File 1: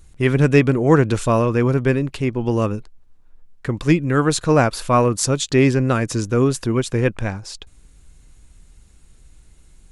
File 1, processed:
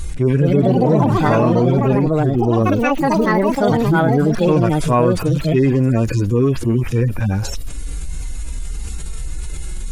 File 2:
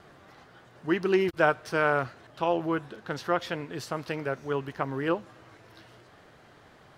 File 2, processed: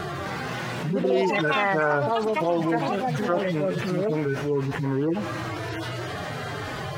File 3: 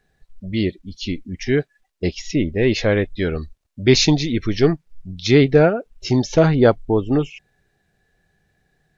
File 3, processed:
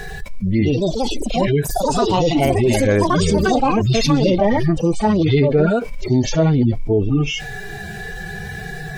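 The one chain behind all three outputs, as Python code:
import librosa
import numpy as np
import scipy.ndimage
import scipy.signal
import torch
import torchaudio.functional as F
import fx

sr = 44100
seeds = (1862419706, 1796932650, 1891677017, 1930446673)

y = fx.hpss_only(x, sr, part='harmonic')
y = fx.echo_pitch(y, sr, ms=258, semitones=5, count=3, db_per_echo=-3.0)
y = fx.env_flatten(y, sr, amount_pct=70)
y = F.gain(torch.from_numpy(y), -2.0).numpy()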